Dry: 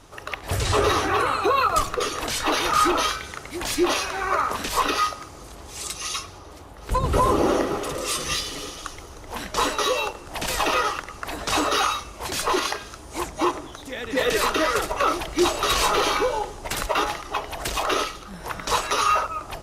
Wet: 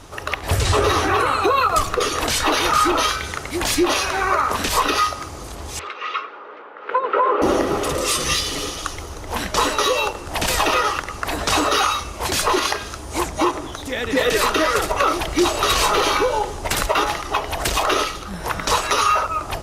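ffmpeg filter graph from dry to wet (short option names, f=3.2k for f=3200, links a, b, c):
-filter_complex "[0:a]asettb=1/sr,asplit=3[a][b][c];[a]atrim=end=5.794[d];[b]atrim=start=5.79:end=7.42,asetpts=PTS-STARTPTS,afade=t=in:d=0.004:c=qsin,afade=t=out:st=1.626:d=0.004:c=qsin,aeval=exprs='val(0)+0.0126*(sin(2*PI*60*n/s)+sin(2*PI*2*60*n/s)/2+sin(2*PI*3*60*n/s)/3+sin(2*PI*4*60*n/s)/4+sin(2*PI*5*60*n/s)/5)':c=same,highpass=f=440:w=0.5412,highpass=f=440:w=1.3066,equalizer=f=450:t=q:w=4:g=5,equalizer=f=710:t=q:w=4:g=-8,equalizer=f=1.4k:t=q:w=4:g=7,lowpass=f=2.6k:w=0.5412,lowpass=f=2.6k:w=1.3066[e];[c]atrim=start=7.416[f];[d][e]acrossfade=d=0.004:c1=hsin:c2=qsin[g];[g][f]acrossfade=d=0.004:c1=qsin:c2=hsin,equalizer=f=80:w=5.4:g=6.5,acompressor=threshold=-25dB:ratio=2,volume=7.5dB"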